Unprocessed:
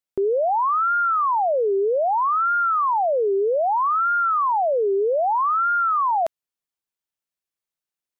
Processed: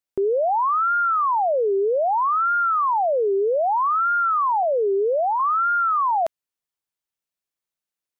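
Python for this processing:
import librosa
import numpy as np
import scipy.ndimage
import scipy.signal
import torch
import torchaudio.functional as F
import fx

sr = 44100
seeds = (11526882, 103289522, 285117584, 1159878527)

y = fx.lowpass(x, sr, hz=1200.0, slope=12, at=(4.63, 5.4))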